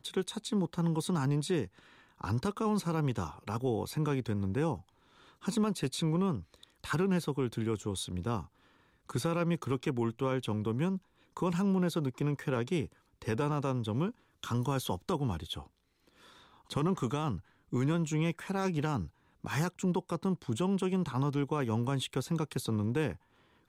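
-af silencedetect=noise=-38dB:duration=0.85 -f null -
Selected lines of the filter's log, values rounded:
silence_start: 15.61
silence_end: 16.71 | silence_duration: 1.10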